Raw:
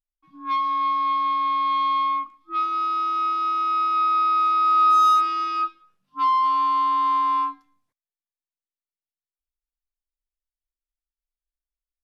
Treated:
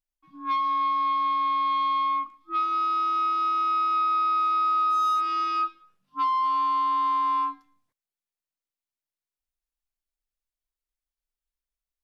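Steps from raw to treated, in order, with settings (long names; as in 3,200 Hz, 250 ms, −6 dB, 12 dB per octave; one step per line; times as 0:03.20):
downward compressor, threshold −22 dBFS, peak gain reduction 7.5 dB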